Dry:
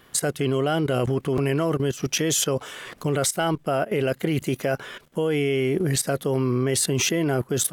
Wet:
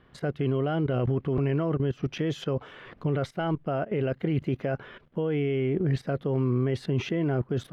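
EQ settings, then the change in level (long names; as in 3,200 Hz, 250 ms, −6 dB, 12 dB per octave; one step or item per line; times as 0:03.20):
high-frequency loss of the air 330 metres
low-shelf EQ 220 Hz +7 dB
−5.5 dB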